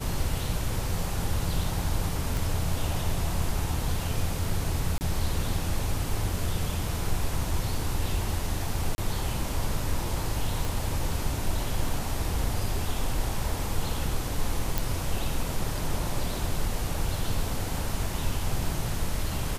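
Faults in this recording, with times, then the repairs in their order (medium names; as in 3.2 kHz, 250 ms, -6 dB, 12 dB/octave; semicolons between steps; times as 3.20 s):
2.37 s: pop
4.98–5.01 s: dropout 29 ms
8.95–8.98 s: dropout 30 ms
10.65 s: pop
14.78 s: pop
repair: de-click; interpolate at 4.98 s, 29 ms; interpolate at 8.95 s, 30 ms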